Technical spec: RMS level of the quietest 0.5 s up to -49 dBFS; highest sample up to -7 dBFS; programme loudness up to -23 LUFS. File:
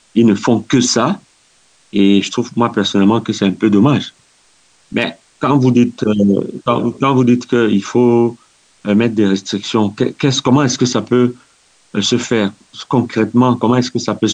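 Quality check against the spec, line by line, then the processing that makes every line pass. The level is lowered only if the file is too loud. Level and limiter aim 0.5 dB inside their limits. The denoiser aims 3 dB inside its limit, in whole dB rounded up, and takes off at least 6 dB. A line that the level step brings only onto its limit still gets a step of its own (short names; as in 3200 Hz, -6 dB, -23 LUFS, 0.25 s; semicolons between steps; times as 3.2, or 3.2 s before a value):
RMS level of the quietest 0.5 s -53 dBFS: OK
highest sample -1.5 dBFS: fail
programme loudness -14.5 LUFS: fail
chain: gain -9 dB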